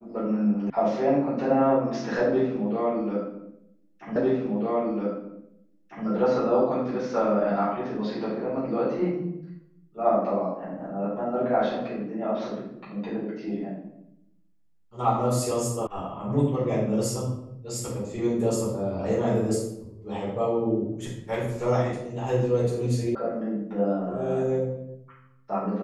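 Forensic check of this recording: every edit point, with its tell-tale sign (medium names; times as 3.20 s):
0.70 s: sound stops dead
4.16 s: repeat of the last 1.9 s
15.87 s: sound stops dead
23.15 s: sound stops dead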